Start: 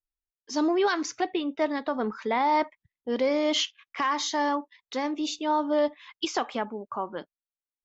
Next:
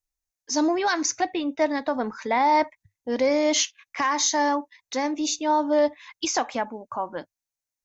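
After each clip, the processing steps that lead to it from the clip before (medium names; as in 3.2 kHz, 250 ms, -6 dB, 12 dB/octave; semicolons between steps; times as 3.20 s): graphic EQ with 31 bands 100 Hz +7 dB, 200 Hz -8 dB, 400 Hz -10 dB, 1.25 kHz -7 dB, 3.15 kHz -8 dB, 6.3 kHz +8 dB; trim +5 dB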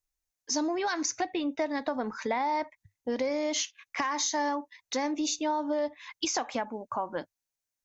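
compression, threshold -27 dBFS, peak gain reduction 10.5 dB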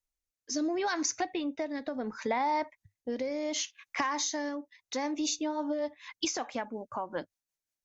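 rotary cabinet horn 0.7 Hz, later 5.5 Hz, at 5.06 s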